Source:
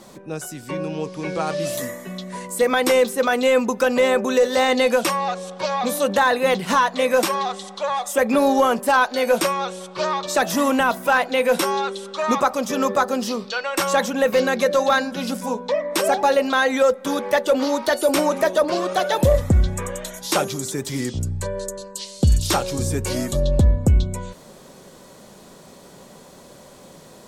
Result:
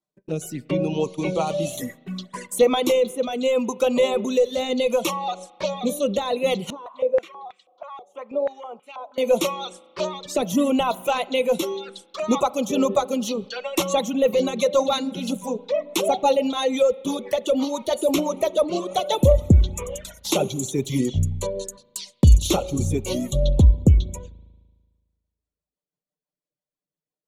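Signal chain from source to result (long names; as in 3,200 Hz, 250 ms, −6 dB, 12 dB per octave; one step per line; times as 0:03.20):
reverb reduction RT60 1.1 s
noise gate −37 dBFS, range −45 dB
speech leveller within 4 dB 2 s
rotating-speaker cabinet horn 0.7 Hz, later 6 Hz, at 0:11.76
flanger swept by the level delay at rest 6.6 ms, full sweep at −27 dBFS
convolution reverb RT60 1.5 s, pre-delay 37 ms, DRR 19.5 dB
0:06.70–0:09.18: band-pass on a step sequencer 6.2 Hz 410–2,300 Hz
level +3 dB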